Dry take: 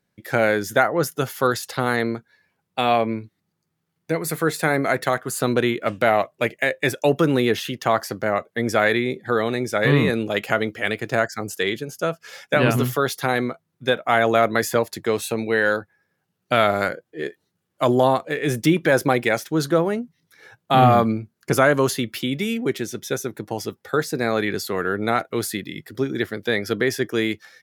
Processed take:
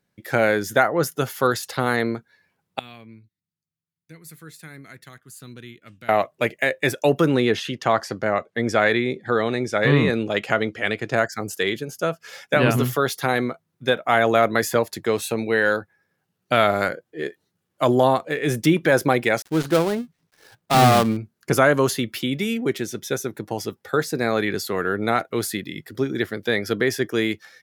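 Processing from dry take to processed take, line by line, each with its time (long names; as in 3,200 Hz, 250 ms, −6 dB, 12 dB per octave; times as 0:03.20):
0:02.79–0:06.09: guitar amp tone stack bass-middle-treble 6-0-2
0:07.29–0:11.17: low-pass filter 7,500 Hz
0:19.42–0:21.17: gap after every zero crossing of 0.18 ms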